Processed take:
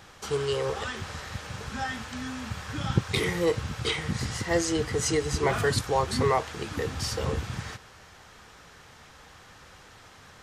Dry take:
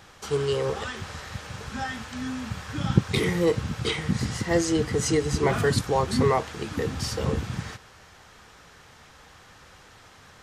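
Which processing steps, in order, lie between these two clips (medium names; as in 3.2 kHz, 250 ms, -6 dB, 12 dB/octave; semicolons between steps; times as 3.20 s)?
dynamic bell 210 Hz, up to -7 dB, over -37 dBFS, Q 0.85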